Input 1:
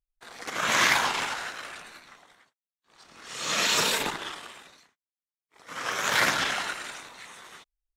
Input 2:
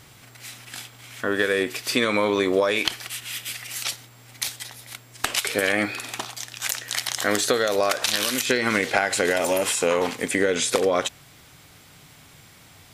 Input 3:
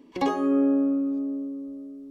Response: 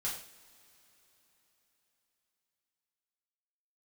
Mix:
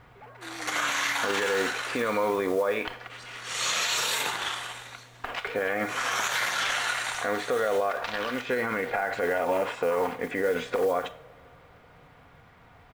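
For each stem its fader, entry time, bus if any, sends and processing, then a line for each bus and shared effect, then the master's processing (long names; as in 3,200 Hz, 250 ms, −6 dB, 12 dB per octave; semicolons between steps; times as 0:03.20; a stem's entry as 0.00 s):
+3.0 dB, 0.20 s, send −4.5 dB, Bessel high-pass filter 190 Hz, order 2; notch filter 5,100 Hz, Q 11; downward compressor, threshold −29 dBFS, peak gain reduction 11.5 dB
+2.0 dB, 0.00 s, send −12.5 dB, low-pass filter 1,300 Hz 12 dB per octave; comb filter 4.2 ms, depth 31%; noise that follows the level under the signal 29 dB
−15.5 dB, 0.00 s, no send, three sine waves on the formant tracks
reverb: on, pre-delay 3 ms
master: parametric band 220 Hz −9.5 dB 2.1 octaves; brickwall limiter −17 dBFS, peak gain reduction 11 dB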